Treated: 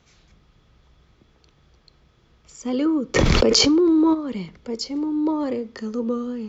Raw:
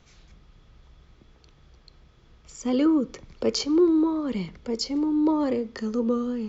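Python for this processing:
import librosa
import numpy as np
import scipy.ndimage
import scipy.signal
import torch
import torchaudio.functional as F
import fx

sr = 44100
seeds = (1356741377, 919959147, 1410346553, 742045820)

y = fx.highpass(x, sr, hz=64.0, slope=6)
y = fx.env_flatten(y, sr, amount_pct=100, at=(3.14, 4.13), fade=0.02)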